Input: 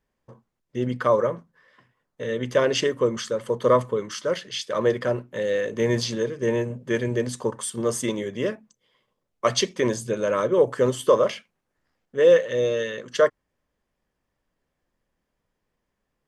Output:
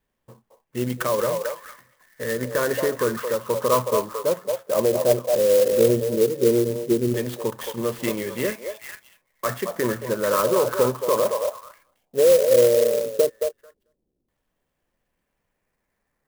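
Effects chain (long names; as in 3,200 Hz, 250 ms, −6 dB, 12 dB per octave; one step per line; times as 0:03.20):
brickwall limiter −14.5 dBFS, peak gain reduction 8 dB
auto-filter low-pass saw down 0.14 Hz 330–3,800 Hz
pitch vibrato 2.2 Hz 11 cents
echo through a band-pass that steps 221 ms, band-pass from 710 Hz, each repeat 1.4 octaves, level −2 dB
converter with an unsteady clock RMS 0.056 ms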